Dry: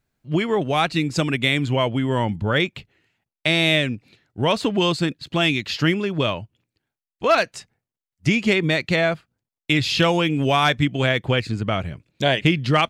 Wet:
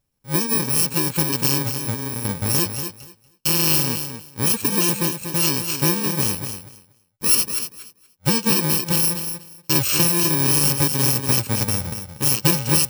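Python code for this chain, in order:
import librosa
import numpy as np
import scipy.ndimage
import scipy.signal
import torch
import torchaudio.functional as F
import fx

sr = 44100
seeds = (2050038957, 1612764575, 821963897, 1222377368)

y = fx.bit_reversed(x, sr, seeds[0], block=64)
y = fx.over_compress(y, sr, threshold_db=-28.0, ratio=-1.0, at=(1.62, 2.25))
y = fx.echo_feedback(y, sr, ms=238, feedback_pct=17, wet_db=-8.5)
y = fx.band_squash(y, sr, depth_pct=70, at=(9.75, 11.65))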